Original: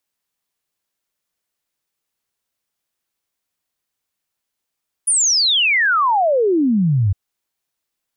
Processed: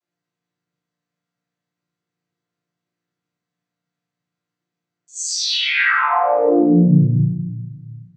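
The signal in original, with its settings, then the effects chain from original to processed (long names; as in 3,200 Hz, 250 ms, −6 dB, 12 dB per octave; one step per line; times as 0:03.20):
exponential sine sweep 10,000 Hz → 91 Hz 2.06 s −12.5 dBFS
channel vocoder with a chord as carrier major triad, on A#2
downward compressor, threshold −20 dBFS
rectangular room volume 430 cubic metres, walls mixed, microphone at 3 metres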